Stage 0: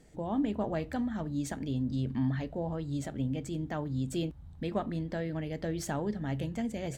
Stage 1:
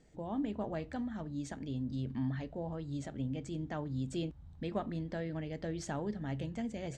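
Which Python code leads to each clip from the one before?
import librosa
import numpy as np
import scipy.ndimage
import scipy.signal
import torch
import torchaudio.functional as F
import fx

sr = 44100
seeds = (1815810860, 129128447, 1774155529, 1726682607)

y = scipy.signal.sosfilt(scipy.signal.butter(4, 7900.0, 'lowpass', fs=sr, output='sos'), x)
y = fx.rider(y, sr, range_db=10, speed_s=2.0)
y = y * 10.0 ** (-5.0 / 20.0)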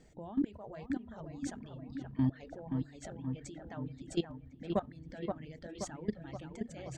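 y = fx.level_steps(x, sr, step_db=17)
y = fx.echo_wet_lowpass(y, sr, ms=526, feedback_pct=63, hz=2700.0, wet_db=-5)
y = fx.dereverb_blind(y, sr, rt60_s=1.3)
y = y * 10.0 ** (7.0 / 20.0)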